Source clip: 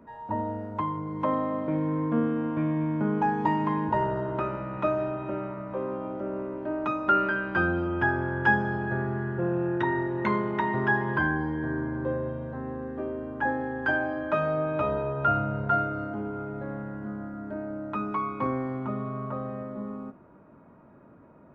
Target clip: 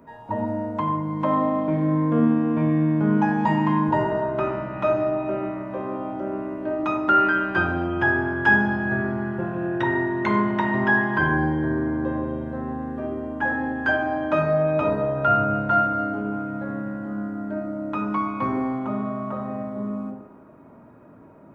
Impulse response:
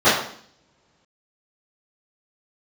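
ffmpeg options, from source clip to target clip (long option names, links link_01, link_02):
-filter_complex "[0:a]highshelf=frequency=4500:gain=8.5,asplit=2[link_01][link_02];[1:a]atrim=start_sample=2205,asetrate=22932,aresample=44100[link_03];[link_02][link_03]afir=irnorm=-1:irlink=0,volume=-32dB[link_04];[link_01][link_04]amix=inputs=2:normalize=0,volume=2.5dB"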